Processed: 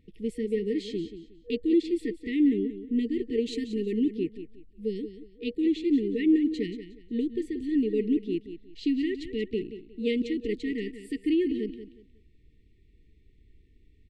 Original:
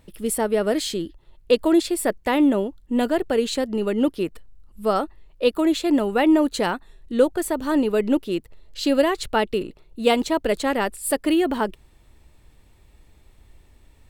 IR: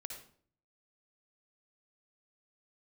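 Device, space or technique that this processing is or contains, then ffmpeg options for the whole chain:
phone in a pocket: -filter_complex "[0:a]asettb=1/sr,asplit=3[link_01][link_02][link_03];[link_01]atrim=end=3.464[link_04];[link_02]atrim=start=3.46:end=4,asetpts=PTS-STARTPTS,afade=type=in:duration=0.004:curve=qsin,afade=type=out:start_time=0.536:duration=0.004:curve=qsin,aemphasis=mode=production:type=50fm[link_05];[link_03]atrim=start=3.996[link_06];[link_04][link_05]acrossfade=duration=0.004:curve1=hsin:curve2=qsin[link_07];[link_07][link_06]acrossfade=duration=0.004:curve1=qsin:curve2=hsin,afftfilt=real='re*(1-between(b*sr/4096,480,1800))':imag='im*(1-between(b*sr/4096,480,1800))':win_size=4096:overlap=0.75,lowpass=3800,equalizer=frequency=260:width_type=o:width=1.1:gain=3,highshelf=frequency=2300:gain=-8.5,equalizer=frequency=8100:width_type=o:width=2.4:gain=4,aecho=1:1:181|362|543:0.266|0.0692|0.018,volume=-7dB"

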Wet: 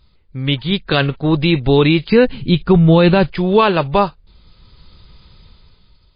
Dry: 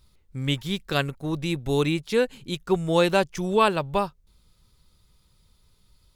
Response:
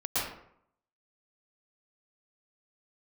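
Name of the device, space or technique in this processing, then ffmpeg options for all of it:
low-bitrate web radio: -filter_complex "[0:a]asplit=3[link_01][link_02][link_03];[link_01]afade=type=out:start_time=2.08:duration=0.02[link_04];[link_02]bass=frequency=250:gain=10,treble=frequency=4000:gain=-3,afade=type=in:start_time=2.08:duration=0.02,afade=type=out:start_time=3.31:duration=0.02[link_05];[link_03]afade=type=in:start_time=3.31:duration=0.02[link_06];[link_04][link_05][link_06]amix=inputs=3:normalize=0,dynaudnorm=framelen=130:gausssize=11:maxgain=12dB,alimiter=limit=-8dB:level=0:latency=1:release=18,volume=6.5dB" -ar 11025 -c:a libmp3lame -b:a 24k

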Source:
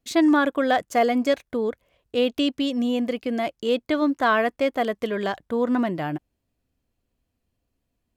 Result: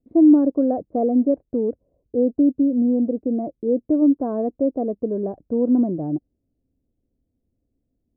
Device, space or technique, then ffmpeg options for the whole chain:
under water: -af "lowpass=frequency=570:width=0.5412,lowpass=frequency=570:width=1.3066,equalizer=frequency=280:width_type=o:width=0.55:gain=5,volume=2dB"

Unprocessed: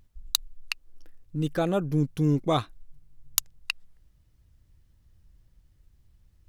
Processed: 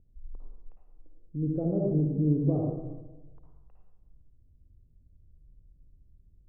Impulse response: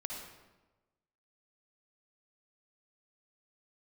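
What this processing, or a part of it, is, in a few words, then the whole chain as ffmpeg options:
next room: -filter_complex "[0:a]lowpass=frequency=500:width=0.5412,lowpass=frequency=500:width=1.3066[link_01];[1:a]atrim=start_sample=2205[link_02];[link_01][link_02]afir=irnorm=-1:irlink=0"

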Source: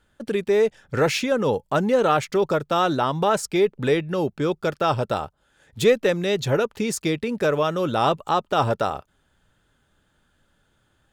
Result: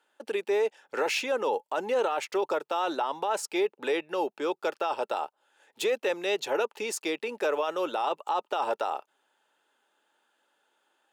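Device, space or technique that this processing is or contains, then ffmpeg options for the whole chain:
laptop speaker: -af "highpass=frequency=340:width=0.5412,highpass=frequency=340:width=1.3066,equalizer=frequency=870:width_type=o:width=0.36:gain=8.5,equalizer=frequency=2700:width_type=o:width=0.23:gain=6,alimiter=limit=-14dB:level=0:latency=1:release=14,volume=-5dB"

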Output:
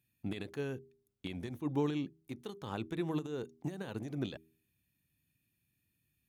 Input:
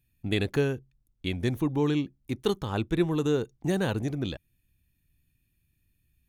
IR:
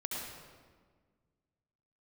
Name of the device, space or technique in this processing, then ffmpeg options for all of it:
de-esser from a sidechain: -filter_complex "[0:a]asplit=2[link_01][link_02];[link_02]highpass=frequency=6200:width=0.5412,highpass=frequency=6200:width=1.3066,apad=whole_len=277103[link_03];[link_01][link_03]sidechaincompress=threshold=-60dB:ratio=6:attack=3.7:release=85,highpass=130,bandreject=frequency=80.27:width_type=h:width=4,bandreject=frequency=160.54:width_type=h:width=4,bandreject=frequency=240.81:width_type=h:width=4,bandreject=frequency=321.08:width_type=h:width=4,bandreject=frequency=401.35:width_type=h:width=4,volume=-3dB"

